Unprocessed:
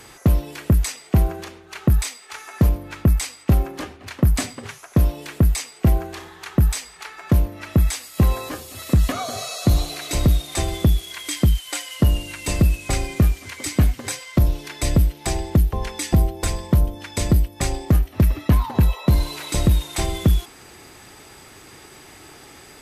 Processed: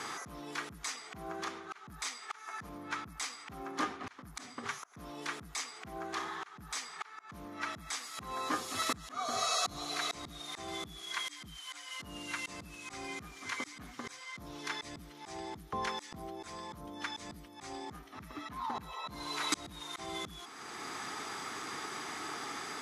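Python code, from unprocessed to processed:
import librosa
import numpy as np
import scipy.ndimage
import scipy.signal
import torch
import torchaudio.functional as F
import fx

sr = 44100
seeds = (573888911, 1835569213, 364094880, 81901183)

y = fx.cabinet(x, sr, low_hz=250.0, low_slope=12, high_hz=9500.0, hz=(360.0, 560.0, 1200.0, 2700.0, 4500.0, 8300.0), db=(-5, -9, 7, -6, -3, -9))
y = fx.auto_swell(y, sr, attack_ms=684.0)
y = F.gain(torch.from_numpy(y), 5.0).numpy()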